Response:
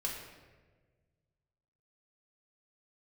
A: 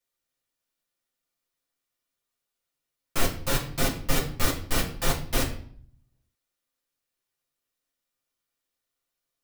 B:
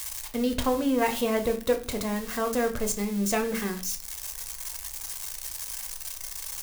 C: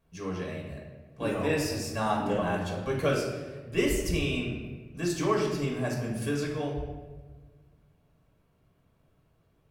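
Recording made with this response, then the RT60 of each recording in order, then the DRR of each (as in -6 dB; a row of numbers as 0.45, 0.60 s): C; 0.55, 0.40, 1.4 s; -6.0, 5.0, -3.0 dB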